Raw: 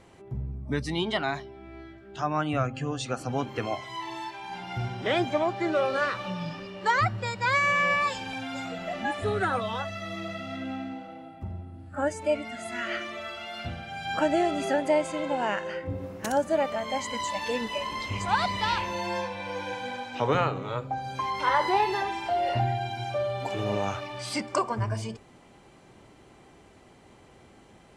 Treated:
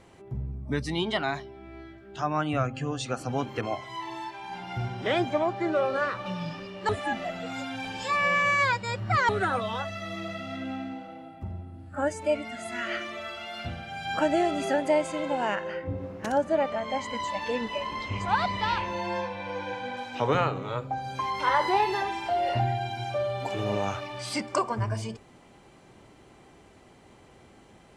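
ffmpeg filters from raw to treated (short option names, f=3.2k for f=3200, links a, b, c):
-filter_complex "[0:a]asettb=1/sr,asplit=3[a][b][c];[a]atrim=end=3.614[d];[b]atrim=start=3.61:end=6.26,asetpts=PTS-STARTPTS,afade=t=in:d=0.004:c=qsin,afade=t=out:st=2.646:d=0.004:c=qsin,adynamicequalizer=threshold=0.00794:dfrequency=2000:dqfactor=0.7:tfrequency=2000:tqfactor=0.7:attack=5:release=100:ratio=0.375:range=3.5:mode=cutabove:tftype=highshelf[e];[c]atrim=start=6.256[f];[d][e]acrossfade=d=0.004:c1=hsin:c2=qsin[g];[g][f]acrossfade=d=0.004:c1=qsin:c2=hsin,asettb=1/sr,asplit=3[h][i][j];[h]atrim=end=15.554[k];[i]atrim=start=15.55:end=19.97,asetpts=PTS-STARTPTS,afade=t=in:d=0.004:c=qsin,afade=t=out:st=4.416:d=0.004:c=qsin,aemphasis=mode=reproduction:type=50fm[l];[j]atrim=start=19.966[m];[k][l]acrossfade=d=0.004:c1=hsin:c2=qsin[n];[n][m]acrossfade=d=0.004:c1=qsin:c2=hsin,asplit=3[o][p][q];[o]atrim=end=6.892[r];[p]atrim=start=6.888:end=9.292,asetpts=PTS-STARTPTS,areverse[s];[q]atrim=start=9.288[t];[r][s]acrossfade=d=0.004:c1=hsin:c2=hsin[u];[u][t]acrossfade=d=0.004:c1=hsin:c2=hsin"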